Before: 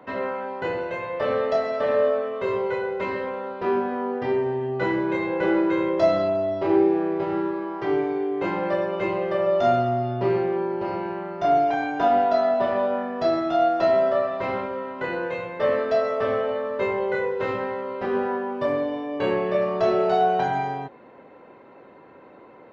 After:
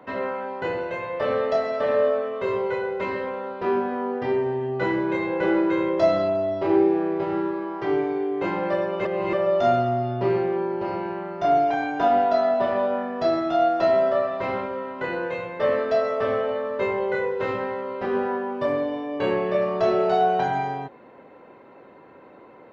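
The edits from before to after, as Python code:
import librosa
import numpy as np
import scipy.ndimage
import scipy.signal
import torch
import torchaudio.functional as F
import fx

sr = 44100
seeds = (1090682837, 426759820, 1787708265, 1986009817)

y = fx.edit(x, sr, fx.reverse_span(start_s=9.05, length_s=0.28), tone=tone)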